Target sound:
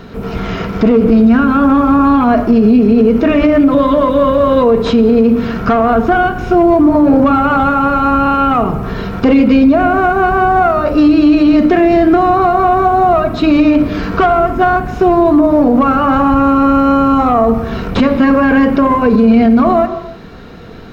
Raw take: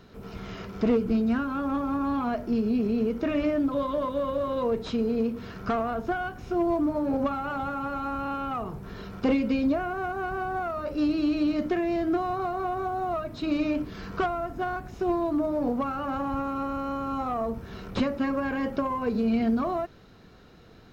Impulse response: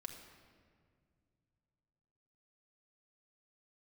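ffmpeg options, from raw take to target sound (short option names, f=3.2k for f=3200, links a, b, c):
-filter_complex "[0:a]asplit=2[a][b];[1:a]atrim=start_sample=2205,afade=t=out:st=0.38:d=0.01,atrim=end_sample=17199,lowpass=3.9k[c];[b][c]afir=irnorm=-1:irlink=0,volume=3dB[d];[a][d]amix=inputs=2:normalize=0,alimiter=level_in=15.5dB:limit=-1dB:release=50:level=0:latency=1,volume=-1dB"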